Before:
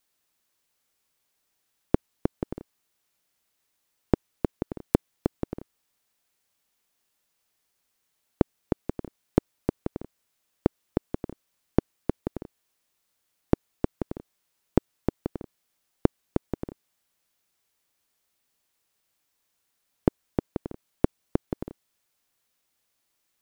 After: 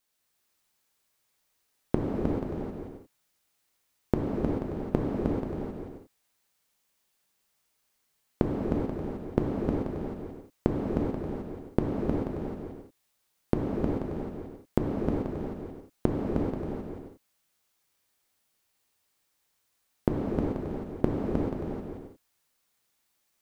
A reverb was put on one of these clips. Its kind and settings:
reverb whose tail is shaped and stops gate 460 ms flat, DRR −3.5 dB
level −4 dB

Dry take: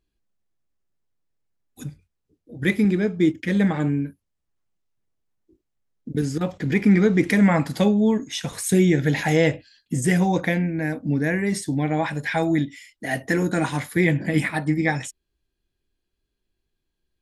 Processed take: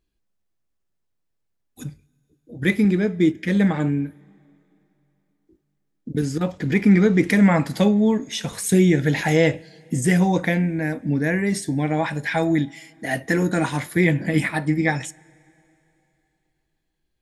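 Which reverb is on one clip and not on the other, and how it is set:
coupled-rooms reverb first 0.22 s, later 3.2 s, from −19 dB, DRR 18.5 dB
level +1 dB

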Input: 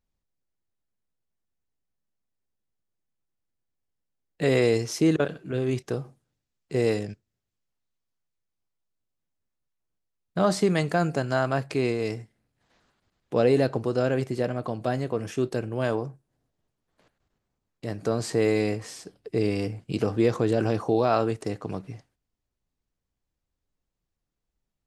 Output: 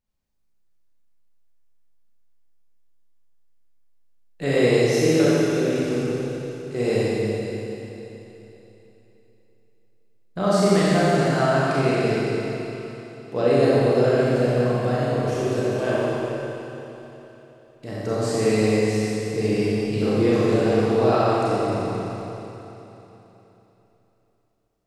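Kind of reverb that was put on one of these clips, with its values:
four-comb reverb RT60 3.4 s, combs from 29 ms, DRR −8.5 dB
level −3.5 dB

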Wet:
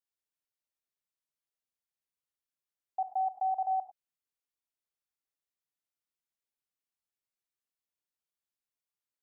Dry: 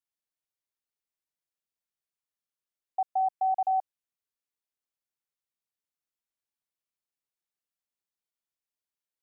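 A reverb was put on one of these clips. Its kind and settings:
reverb whose tail is shaped and stops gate 120 ms rising, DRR 10 dB
level −4 dB

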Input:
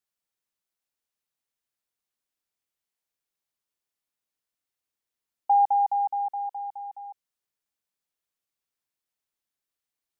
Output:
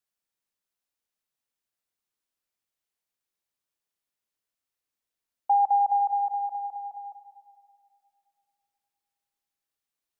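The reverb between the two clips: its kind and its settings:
comb and all-pass reverb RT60 2.5 s, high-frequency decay 0.8×, pre-delay 10 ms, DRR 8 dB
level −1 dB

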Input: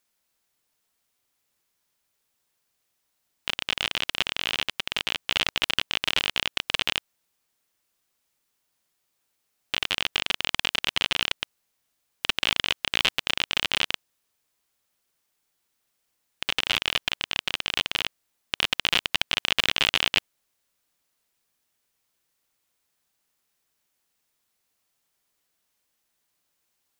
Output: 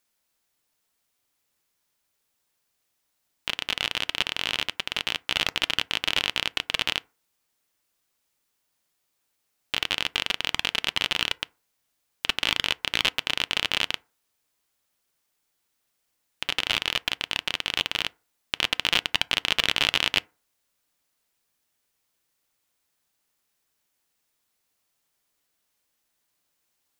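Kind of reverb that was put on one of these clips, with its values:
feedback delay network reverb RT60 0.35 s, low-frequency decay 0.9×, high-frequency decay 0.45×, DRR 18.5 dB

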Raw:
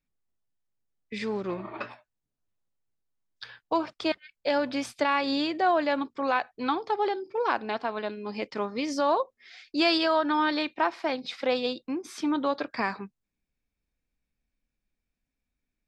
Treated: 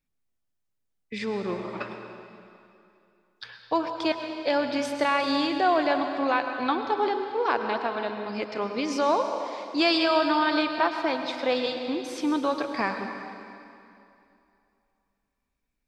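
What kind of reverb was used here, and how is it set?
dense smooth reverb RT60 2.7 s, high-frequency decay 0.9×, pre-delay 90 ms, DRR 5.5 dB
level +1 dB

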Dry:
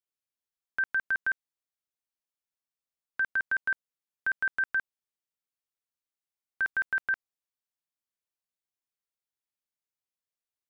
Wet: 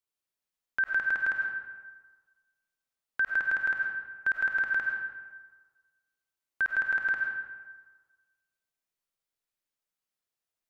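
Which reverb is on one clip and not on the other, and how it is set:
comb and all-pass reverb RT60 1.4 s, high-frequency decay 0.6×, pre-delay 60 ms, DRR 1 dB
level +1 dB

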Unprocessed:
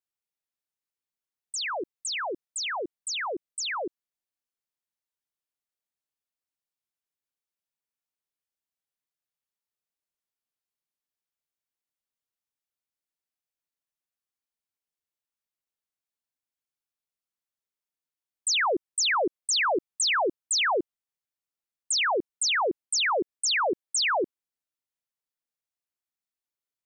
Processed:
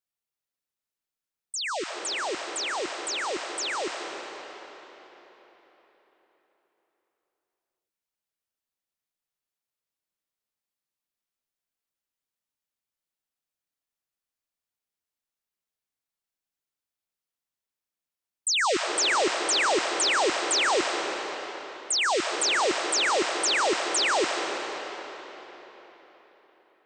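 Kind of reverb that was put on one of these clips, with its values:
comb and all-pass reverb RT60 4.2 s, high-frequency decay 0.8×, pre-delay 85 ms, DRR 2.5 dB

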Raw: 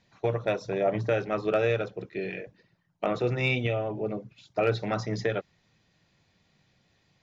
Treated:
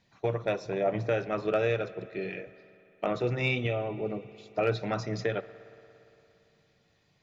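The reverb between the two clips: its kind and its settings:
spring reverb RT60 3 s, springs 57 ms, chirp 75 ms, DRR 15.5 dB
level −2 dB

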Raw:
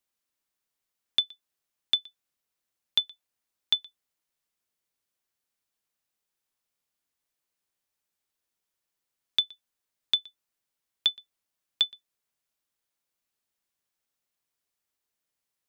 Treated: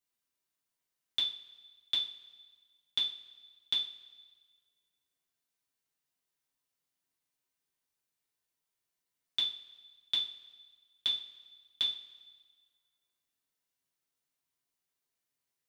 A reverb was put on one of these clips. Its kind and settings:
coupled-rooms reverb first 0.33 s, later 1.6 s, from −19 dB, DRR −4.5 dB
level −8.5 dB

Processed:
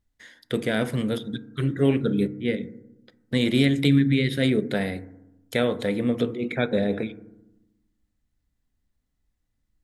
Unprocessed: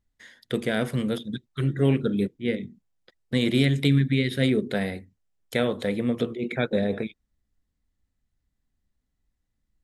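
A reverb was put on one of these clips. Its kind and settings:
feedback delay network reverb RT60 0.93 s, low-frequency decay 1.45×, high-frequency decay 0.25×, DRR 13.5 dB
level +1 dB

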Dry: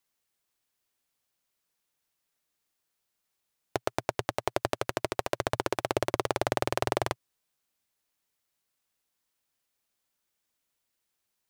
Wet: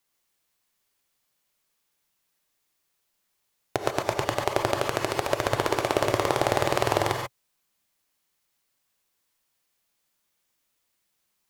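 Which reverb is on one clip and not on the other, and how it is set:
reverb whose tail is shaped and stops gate 160 ms rising, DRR 1.5 dB
level +3.5 dB

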